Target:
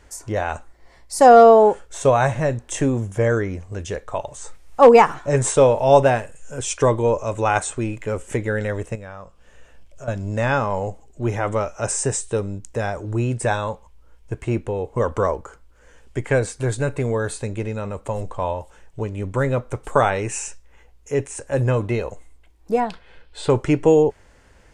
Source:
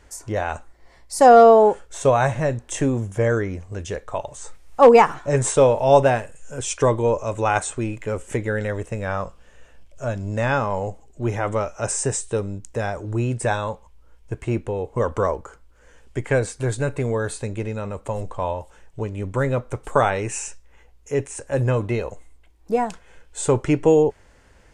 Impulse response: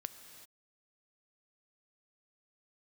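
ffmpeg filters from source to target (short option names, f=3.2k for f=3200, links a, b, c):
-filter_complex "[0:a]asettb=1/sr,asplit=3[a][b][c];[a]atrim=end=8.954[d];[b]atrim=start=8.95:end=10.08,asetpts=PTS-STARTPTS,afade=t=in:d=0.004:c=qsin,afade=t=out:st=1.126:d=0.004:c=qsin,acompressor=threshold=-37dB:ratio=4[e];[c]atrim=start=10.076[f];[d][e]acrossfade=d=0.004:c1=hsin:c2=qsin[g];[g][f]acrossfade=d=0.004:c1=qsin:c2=hsin,asettb=1/sr,asplit=3[h][i][j];[h]atrim=end=22.804[k];[i]atrim=start=22.8:end=23.5,asetpts=PTS-STARTPTS,afade=t=in:d=0.004:c=qsin,afade=t=out:st=0.696:d=0.004:c=qsin,highshelf=f=5.4k:t=q:w=3:g=-8[l];[j]atrim=start=23.496[m];[k][l]acrossfade=d=0.004:c1=hsin:c2=qsin[n];[n][m]acrossfade=d=0.004:c1=qsin:c2=hsin,volume=1dB"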